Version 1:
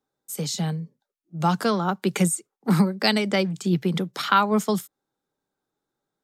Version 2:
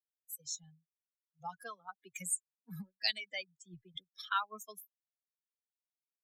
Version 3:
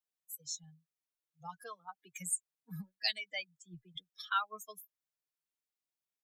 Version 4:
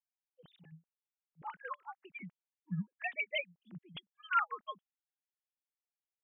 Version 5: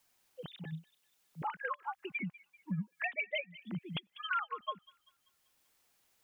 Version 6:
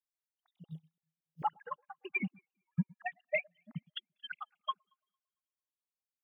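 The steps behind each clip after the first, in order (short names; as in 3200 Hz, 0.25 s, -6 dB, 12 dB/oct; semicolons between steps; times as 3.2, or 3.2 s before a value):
per-bin expansion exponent 3; passive tone stack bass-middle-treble 10-0-10; gain -4 dB
comb 6.5 ms, depth 57%; gain -1.5 dB
sine-wave speech; gain +1 dB
compressor 3:1, threshold -47 dBFS, peak gain reduction 16 dB; thin delay 0.194 s, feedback 34%, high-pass 3200 Hz, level -12.5 dB; three-band squash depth 40%; gain +11.5 dB
random spectral dropouts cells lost 48%; echo with dull and thin repeats by turns 0.113 s, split 920 Hz, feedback 58%, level -10.5 dB; upward expander 2.5:1, over -56 dBFS; gain +8 dB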